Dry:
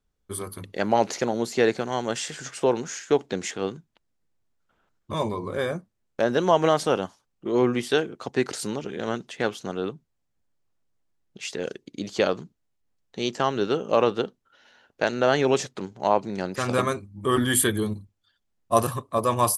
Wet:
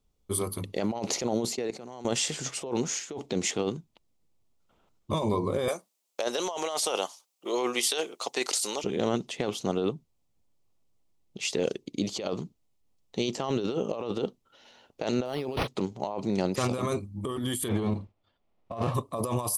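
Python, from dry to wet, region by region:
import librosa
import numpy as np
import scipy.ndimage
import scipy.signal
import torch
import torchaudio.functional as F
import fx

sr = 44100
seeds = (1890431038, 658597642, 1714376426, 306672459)

y = fx.chain(x, sr, fx.highpass(hz=120.0, slope=12),
    fx.peak_eq(hz=3300.0, db=-6.5, octaves=0.25),
    fx.level_steps(step_db=23), at=(1.55, 2.05))
y = fx.chain(y, sr, fx.highpass(hz=600.0, slope=12),
    fx.high_shelf(hz=3900.0, db=11.5), at=(5.68, 8.84))
y = fx.chain(y, sr, fx.high_shelf(hz=4900.0, db=10.0),
    fx.resample_linear(factor=6), at=(15.25, 15.68))
y = fx.envelope_flatten(y, sr, power=0.6, at=(17.67, 18.94), fade=0.02)
y = fx.lowpass(y, sr, hz=1900.0, slope=12, at=(17.67, 18.94), fade=0.02)
y = fx.peak_eq(y, sr, hz=660.0, db=4.0, octaves=0.35, at=(17.67, 18.94), fade=0.02)
y = fx.peak_eq(y, sr, hz=1600.0, db=-12.0, octaves=0.52)
y = fx.over_compress(y, sr, threshold_db=-29.0, ratio=-1.0)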